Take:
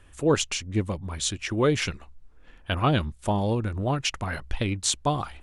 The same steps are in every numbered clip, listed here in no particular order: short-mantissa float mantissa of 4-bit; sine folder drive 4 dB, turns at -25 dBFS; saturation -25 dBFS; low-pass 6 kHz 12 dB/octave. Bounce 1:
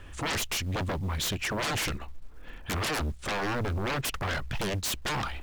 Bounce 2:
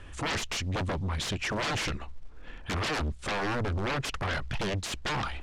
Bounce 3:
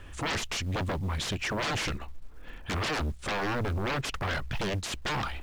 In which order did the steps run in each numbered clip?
low-pass > sine folder > saturation > short-mantissa float; short-mantissa float > sine folder > saturation > low-pass; sine folder > saturation > low-pass > short-mantissa float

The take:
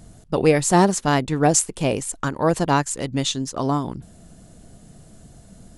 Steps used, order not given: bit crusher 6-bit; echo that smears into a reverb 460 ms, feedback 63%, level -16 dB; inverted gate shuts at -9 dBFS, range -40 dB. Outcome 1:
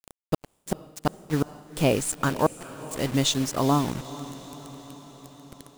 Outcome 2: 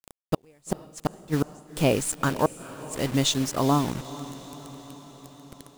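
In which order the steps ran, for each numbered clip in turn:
inverted gate > bit crusher > echo that smears into a reverb; bit crusher > inverted gate > echo that smears into a reverb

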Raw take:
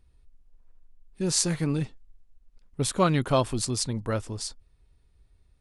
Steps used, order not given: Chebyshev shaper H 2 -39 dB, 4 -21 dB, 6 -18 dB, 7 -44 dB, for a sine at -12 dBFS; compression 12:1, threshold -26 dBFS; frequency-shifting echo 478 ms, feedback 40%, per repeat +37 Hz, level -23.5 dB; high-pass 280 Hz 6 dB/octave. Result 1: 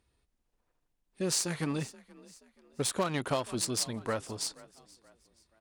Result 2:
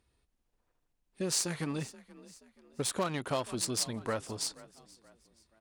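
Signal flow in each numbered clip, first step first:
Chebyshev shaper > high-pass > frequency-shifting echo > compression; Chebyshev shaper > frequency-shifting echo > compression > high-pass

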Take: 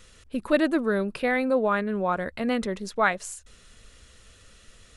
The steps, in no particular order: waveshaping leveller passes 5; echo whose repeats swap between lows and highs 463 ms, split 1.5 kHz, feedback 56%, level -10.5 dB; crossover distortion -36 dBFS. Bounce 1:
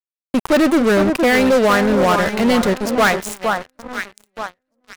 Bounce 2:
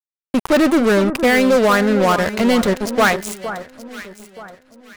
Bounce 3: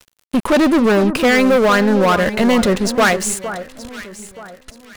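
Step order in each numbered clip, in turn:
crossover distortion > echo whose repeats swap between lows and highs > waveshaping leveller; crossover distortion > waveshaping leveller > echo whose repeats swap between lows and highs; waveshaping leveller > crossover distortion > echo whose repeats swap between lows and highs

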